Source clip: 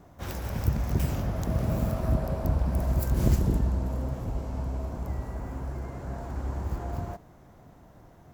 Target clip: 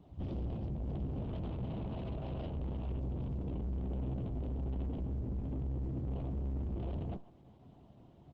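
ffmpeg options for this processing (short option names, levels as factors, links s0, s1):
-filter_complex "[0:a]highpass=67,equalizer=f=490:w=4.1:g=-7.5,asplit=2[s0][s1];[s1]adelay=140,highpass=300,lowpass=3400,asoftclip=type=hard:threshold=0.1,volume=0.251[s2];[s0][s2]amix=inputs=2:normalize=0,afwtdn=0.02,acompressor=threshold=0.0251:ratio=8,aeval=exprs='(tanh(251*val(0)+0.5)-tanh(0.5))/251':c=same,firequalizer=gain_entry='entry(370,0);entry(1700,-17);entry(3000,2);entry(7200,-28)':delay=0.05:min_phase=1,alimiter=level_in=15.8:limit=0.0631:level=0:latency=1:release=282,volume=0.0631,asplit=2[s3][s4];[s4]adelay=15,volume=0.282[s5];[s3][s5]amix=inputs=2:normalize=0,volume=5.96" -ar 48000 -c:a libopus -b:a 12k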